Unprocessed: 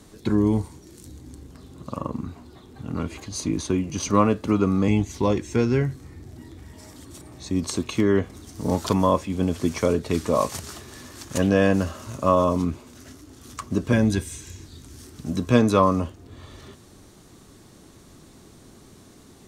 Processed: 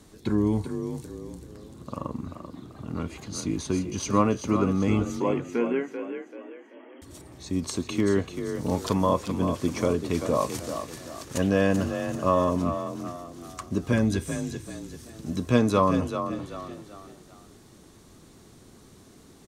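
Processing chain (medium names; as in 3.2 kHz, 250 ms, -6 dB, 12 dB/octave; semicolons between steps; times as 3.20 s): 5.20–7.02 s: brick-wall FIR band-pass 220–3300 Hz; on a send: frequency-shifting echo 387 ms, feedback 38%, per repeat +36 Hz, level -8.5 dB; on the sum: trim -3.5 dB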